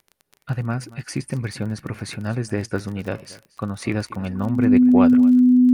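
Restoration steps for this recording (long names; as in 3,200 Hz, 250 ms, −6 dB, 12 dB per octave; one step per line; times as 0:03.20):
click removal
notch filter 250 Hz, Q 30
echo removal 232 ms −19.5 dB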